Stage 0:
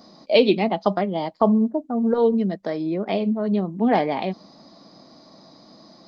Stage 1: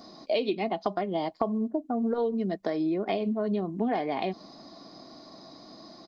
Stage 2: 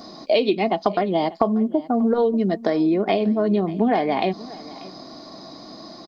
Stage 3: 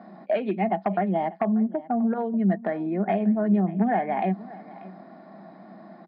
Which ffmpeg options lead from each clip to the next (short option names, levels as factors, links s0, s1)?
-af "aecho=1:1:2.8:0.34,acompressor=threshold=0.0562:ratio=6"
-af "aecho=1:1:589:0.106,volume=2.66"
-af "asoftclip=type=hard:threshold=0.266,highpass=f=170:w=0.5412,highpass=f=170:w=1.3066,equalizer=f=190:t=q:w=4:g=10,equalizer=f=290:t=q:w=4:g=-9,equalizer=f=460:t=q:w=4:g=-8,equalizer=f=780:t=q:w=4:g=4,equalizer=f=1100:t=q:w=4:g=-7,equalizer=f=1700:t=q:w=4:g=6,lowpass=f=2100:w=0.5412,lowpass=f=2100:w=1.3066,volume=0.631"